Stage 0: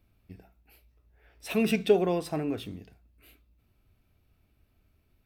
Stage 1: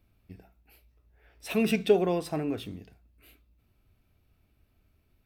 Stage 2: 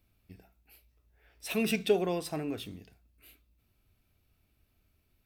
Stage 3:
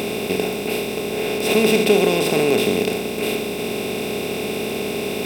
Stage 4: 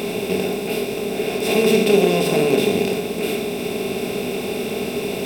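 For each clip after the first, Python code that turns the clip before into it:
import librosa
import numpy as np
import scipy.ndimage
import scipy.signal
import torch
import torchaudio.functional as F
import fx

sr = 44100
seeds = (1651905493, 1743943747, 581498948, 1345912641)

y1 = x
y2 = fx.high_shelf(y1, sr, hz=2600.0, db=7.5)
y2 = y2 * 10.0 ** (-4.5 / 20.0)
y3 = fx.bin_compress(y2, sr, power=0.2)
y3 = y3 * 10.0 ** (7.0 / 20.0)
y4 = fx.room_shoebox(y3, sr, seeds[0], volume_m3=190.0, walls='furnished', distance_m=1.2)
y4 = y4 * 10.0 ** (-3.0 / 20.0)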